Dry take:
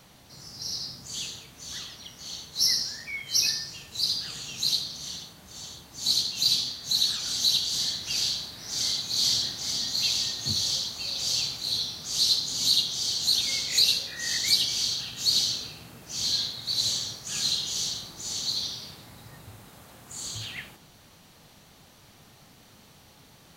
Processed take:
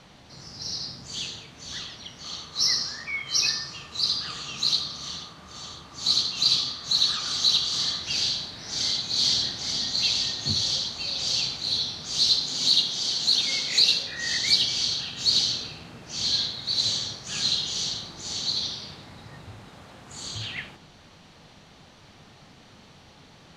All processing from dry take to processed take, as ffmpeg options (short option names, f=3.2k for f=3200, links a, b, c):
-filter_complex "[0:a]asettb=1/sr,asplit=3[a][b][c];[a]atrim=end=2.244[d];[b]atrim=start=2.24:end=8.03,asetpts=PTS-STARTPTS,afade=t=in:d=0.004:c=qsin,afade=t=out:st=5.786:d=0.004:c=qsin,equalizer=f=1.2k:w=5.3:g=11.5,bandreject=f=50:t=h:w=6,bandreject=f=100:t=h:w=6,bandreject=f=150:t=h:w=6,bandreject=f=200:t=h:w=6,bandreject=f=250:t=h:w=6[e];[c]atrim=start=8.026[f];[d][e]acrossfade=d=0.004:c1=hsin:c2=qsin[g];[g][f]acrossfade=d=0.004:c1=qsin:c2=hsin,asettb=1/sr,asplit=3[h][i][j];[h]atrim=end=12.404[k];[i]atrim=start=12.4:end=14.03,asetpts=PTS-STARTPTS,afade=t=in:d=0.004:c=qsin,afade=t=out:st=1.626:d=0.004:c=qsin,highpass=130,acrusher=bits=8:dc=4:mix=0:aa=0.000001[l];[j]atrim=start=14.026[m];[k][l]acrossfade=d=0.004:c1=hsin:c2=qsin[n];[n][m]acrossfade=d=0.004:c1=qsin:c2=hsin,lowpass=4.9k,bandreject=f=60:t=h:w=6,bandreject=f=120:t=h:w=6,volume=4dB"